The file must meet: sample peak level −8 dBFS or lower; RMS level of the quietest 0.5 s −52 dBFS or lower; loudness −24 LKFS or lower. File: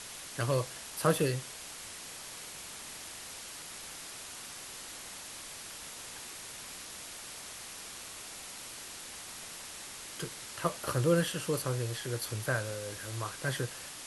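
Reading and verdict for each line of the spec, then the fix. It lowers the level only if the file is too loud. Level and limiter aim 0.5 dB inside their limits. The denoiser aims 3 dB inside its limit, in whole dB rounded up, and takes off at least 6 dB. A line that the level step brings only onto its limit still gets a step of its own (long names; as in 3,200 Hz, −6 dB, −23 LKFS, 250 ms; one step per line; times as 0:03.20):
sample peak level −13.0 dBFS: in spec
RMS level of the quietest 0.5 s −45 dBFS: out of spec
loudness −36.5 LKFS: in spec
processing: broadband denoise 10 dB, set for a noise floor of −45 dBFS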